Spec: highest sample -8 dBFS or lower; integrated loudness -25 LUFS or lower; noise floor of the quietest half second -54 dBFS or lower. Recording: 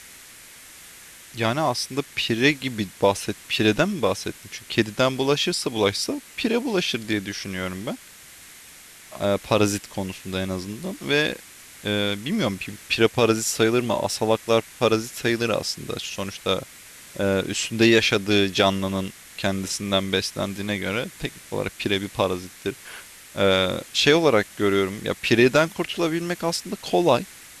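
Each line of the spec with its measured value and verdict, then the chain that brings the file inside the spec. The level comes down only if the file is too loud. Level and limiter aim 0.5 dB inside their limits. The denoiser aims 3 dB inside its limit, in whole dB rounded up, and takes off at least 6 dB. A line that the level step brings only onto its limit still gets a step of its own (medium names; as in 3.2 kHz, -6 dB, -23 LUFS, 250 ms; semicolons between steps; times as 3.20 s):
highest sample -5.5 dBFS: fail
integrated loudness -23.0 LUFS: fail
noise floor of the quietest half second -46 dBFS: fail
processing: noise reduction 9 dB, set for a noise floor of -46 dBFS; trim -2.5 dB; peak limiter -8.5 dBFS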